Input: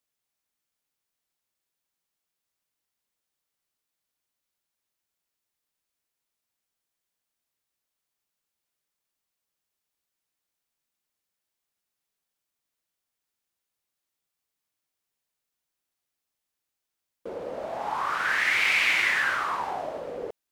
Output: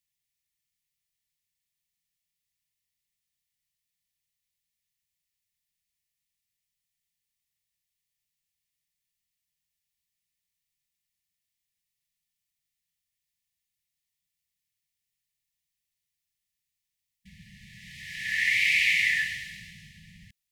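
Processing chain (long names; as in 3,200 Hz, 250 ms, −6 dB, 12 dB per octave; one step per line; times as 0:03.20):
linear-phase brick-wall band-stop 210–1,700 Hz
low-shelf EQ 180 Hz +4 dB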